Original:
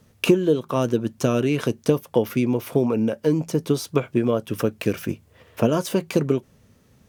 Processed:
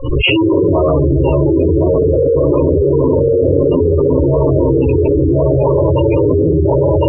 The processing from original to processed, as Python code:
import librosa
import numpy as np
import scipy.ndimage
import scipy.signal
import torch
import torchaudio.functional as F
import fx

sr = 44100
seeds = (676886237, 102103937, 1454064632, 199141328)

p1 = fx.hum_notches(x, sr, base_hz=50, count=9)
p2 = fx.quant_dither(p1, sr, seeds[0], bits=6, dither='none')
p3 = p1 + F.gain(torch.from_numpy(p2), -8.0).numpy()
p4 = fx.peak_eq(p3, sr, hz=630.0, db=5.5, octaves=0.82)
p5 = fx.pitch_keep_formants(p4, sr, semitones=-9.0)
p6 = p5 + fx.echo_single(p5, sr, ms=1057, db=-4.5, dry=0)
p7 = fx.room_shoebox(p6, sr, seeds[1], volume_m3=360.0, walls='mixed', distance_m=6.4)
p8 = 10.0 ** (-3.0 / 20.0) * np.tanh(p7 / 10.0 ** (-3.0 / 20.0))
p9 = fx.fixed_phaser(p8, sr, hz=1100.0, stages=8)
p10 = fx.spec_gate(p9, sr, threshold_db=-15, keep='strong')
p11 = scipy.signal.sosfilt(scipy.signal.butter(2, 3000.0, 'lowpass', fs=sr, output='sos'), p10)
p12 = fx.low_shelf(p11, sr, hz=61.0, db=-8.0)
p13 = fx.env_flatten(p12, sr, amount_pct=100)
y = F.gain(torch.from_numpy(p13), -4.0).numpy()